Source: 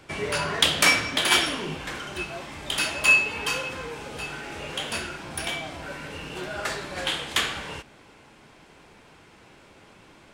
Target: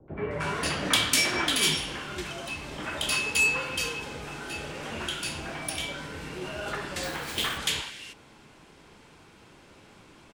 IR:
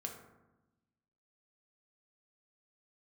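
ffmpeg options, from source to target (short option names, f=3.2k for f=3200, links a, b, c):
-filter_complex "[0:a]acrossover=split=330|4900[a][b][c];[b]asoftclip=type=tanh:threshold=-17dB[d];[a][d][c]amix=inputs=3:normalize=0,asettb=1/sr,asplit=3[e][f][g];[e]atrim=end=6.724[h];[f]atrim=start=6.72:end=7.27,asetpts=PTS-STARTPTS,afade=t=in:d=0.004:c=qsin,afade=t=out:st=0.546:d=0.004:c=qsin,acrusher=bits=2:mode=log:mix=0:aa=0.000001[i];[g]atrim=start=7.266[j];[h][i]acrossfade=d=0.004:c1=hsin:c2=qsin[k];[k][j]acrossfade=d=0.004:c1=qsin:c2=hsin,acrossover=split=660|2000[l][m][n];[m]adelay=80[o];[n]adelay=310[p];[l][o][p]amix=inputs=3:normalize=0"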